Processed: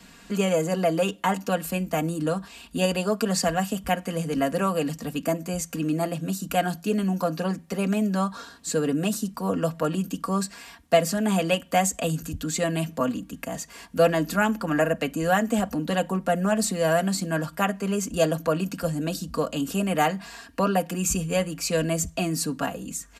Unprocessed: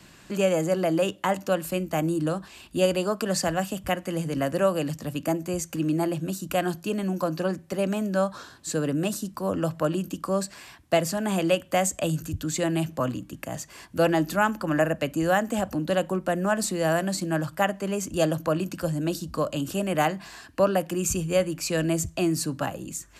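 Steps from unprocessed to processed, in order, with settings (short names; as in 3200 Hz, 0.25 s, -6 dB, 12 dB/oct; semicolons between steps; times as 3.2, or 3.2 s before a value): comb 4.3 ms, depth 73%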